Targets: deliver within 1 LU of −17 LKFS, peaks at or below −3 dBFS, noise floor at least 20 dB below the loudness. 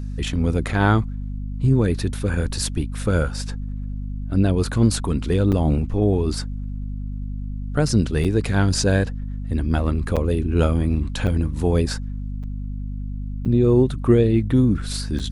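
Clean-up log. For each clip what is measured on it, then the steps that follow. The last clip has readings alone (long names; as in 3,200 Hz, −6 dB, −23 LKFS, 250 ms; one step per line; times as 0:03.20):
number of dropouts 7; longest dropout 6.6 ms; mains hum 50 Hz; hum harmonics up to 250 Hz; level of the hum −26 dBFS; integrated loudness −22.0 LKFS; sample peak −4.0 dBFS; target loudness −17.0 LKFS
→ repair the gap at 0:05.52/0:08.24/0:10.16/0:11.27/0:12.43/0:13.45/0:15.19, 6.6 ms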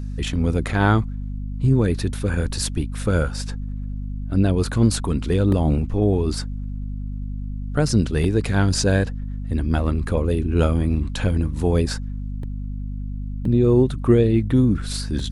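number of dropouts 0; mains hum 50 Hz; hum harmonics up to 250 Hz; level of the hum −26 dBFS
→ hum removal 50 Hz, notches 5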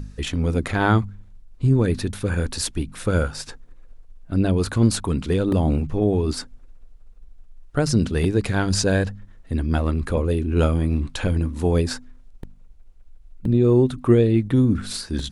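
mains hum none found; integrated loudness −22.0 LKFS; sample peak −4.0 dBFS; target loudness −17.0 LKFS
→ level +5 dB
brickwall limiter −3 dBFS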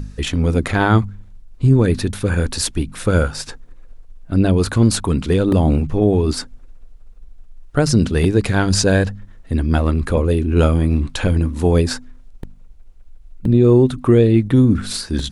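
integrated loudness −17.0 LKFS; sample peak −3.0 dBFS; background noise floor −41 dBFS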